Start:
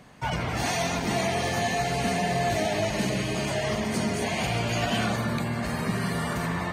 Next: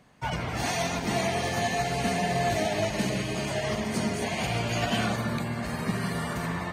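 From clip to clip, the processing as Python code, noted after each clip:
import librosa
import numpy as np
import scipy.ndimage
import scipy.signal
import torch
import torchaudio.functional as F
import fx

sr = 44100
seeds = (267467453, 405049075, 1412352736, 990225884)

y = fx.upward_expand(x, sr, threshold_db=-39.0, expansion=1.5)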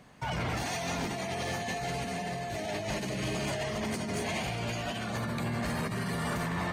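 y = fx.over_compress(x, sr, threshold_db=-32.0, ratio=-1.0)
y = 10.0 ** (-26.0 / 20.0) * np.tanh(y / 10.0 ** (-26.0 / 20.0))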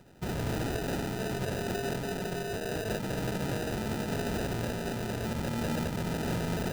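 y = fx.sample_hold(x, sr, seeds[0], rate_hz=1100.0, jitter_pct=0)
y = y + 10.0 ** (-6.0 / 20.0) * np.pad(y, (int(220 * sr / 1000.0), 0))[:len(y)]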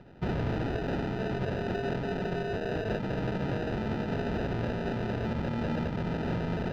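y = fx.rider(x, sr, range_db=10, speed_s=0.5)
y = fx.air_absorb(y, sr, metres=260.0)
y = y * librosa.db_to_amplitude(2.0)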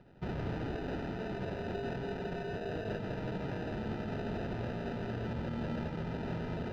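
y = x + 10.0 ** (-6.5 / 20.0) * np.pad(x, (int(163 * sr / 1000.0), 0))[:len(x)]
y = y * librosa.db_to_amplitude(-7.0)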